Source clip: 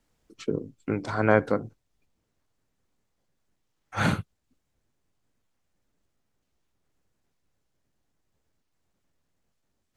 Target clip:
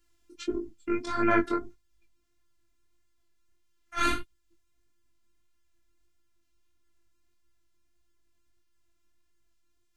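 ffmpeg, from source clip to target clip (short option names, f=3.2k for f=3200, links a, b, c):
-af "afftfilt=real='hypot(re,im)*cos(PI*b)':imag='0':win_size=512:overlap=0.75,equalizer=f=650:w=1.3:g=-10,flanger=delay=18:depth=4.5:speed=1.6,volume=8.5dB"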